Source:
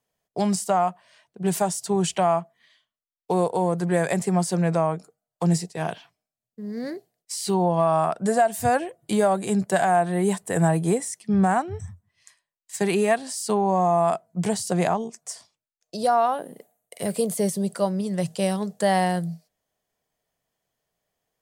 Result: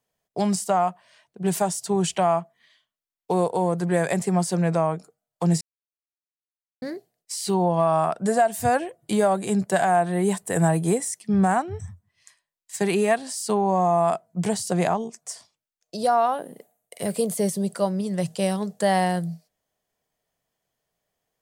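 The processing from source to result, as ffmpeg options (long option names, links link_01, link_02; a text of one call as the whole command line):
ffmpeg -i in.wav -filter_complex "[0:a]asettb=1/sr,asplit=3[link_01][link_02][link_03];[link_01]atrim=end=10.354[link_04];[link_02]atrim=start=10.35:end=11.56,asetpts=PTS-STARTPTS,afade=type=in:duration=0.004:curve=qsin,afade=type=out:start_time=1.206:duration=0.004:curve=qsin,highshelf=frequency=8000:gain=5[link_05];[link_03]atrim=start=11.556[link_06];[link_04][link_05]acrossfade=duration=0.004:curve1=hsin:curve2=qsin[link_07];[link_07][link_06]acrossfade=duration=0.004:curve1=qsin:curve2=hsin,asplit=3[link_08][link_09][link_10];[link_08]atrim=end=5.61,asetpts=PTS-STARTPTS,afade=type=out:start_time=5.606:duration=0.004:curve=hsin[link_11];[link_09]atrim=start=5.61:end=6.82,asetpts=PTS-STARTPTS,volume=0[link_12];[link_10]atrim=start=6.82,asetpts=PTS-STARTPTS,afade=type=in:duration=0.004:curve=hsin[link_13];[link_11][link_12][link_13]concat=n=3:v=0:a=1" out.wav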